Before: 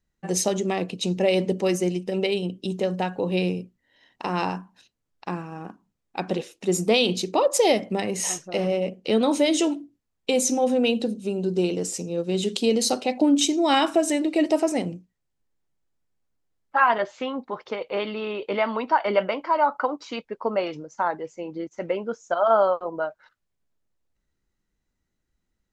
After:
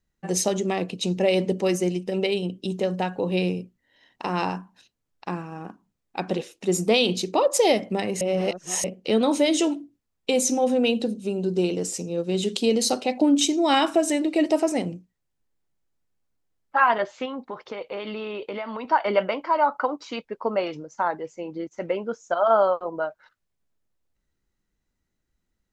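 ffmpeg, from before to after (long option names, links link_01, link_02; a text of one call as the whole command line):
ffmpeg -i in.wav -filter_complex "[0:a]asettb=1/sr,asplit=3[link_01][link_02][link_03];[link_01]atrim=end=17.254[link_04];[link_02]atrim=start=17.25:end=18.85,asetpts=PTS-STARTPTS,afade=type=in:duration=0.004:curve=qsin,afade=type=out:start_time=1.596:duration=0.004:curve=qsin,acompressor=threshold=-28dB:ratio=6:attack=3.2:release=140:knee=1:detection=peak[link_05];[link_03]atrim=start=18.846[link_06];[link_04][link_05]acrossfade=duration=0.004:curve1=hsin:curve2=qsin[link_07];[link_07][link_06]acrossfade=duration=0.004:curve1=qsin:curve2=hsin,asplit=3[link_08][link_09][link_10];[link_08]atrim=end=8.212[link_11];[link_09]atrim=start=8.208:end=8.842,asetpts=PTS-STARTPTS,areverse[link_12];[link_10]atrim=start=8.838[link_13];[link_11][link_12]acrossfade=duration=0.004:curve1=hsin:curve2=hsin[link_14];[link_14][link_13]acrossfade=duration=0.004:curve1=hsin:curve2=hsin" out.wav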